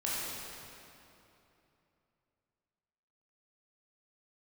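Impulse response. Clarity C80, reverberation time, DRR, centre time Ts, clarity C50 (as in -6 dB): -2.0 dB, 3.0 s, -8.0 dB, 181 ms, -4.0 dB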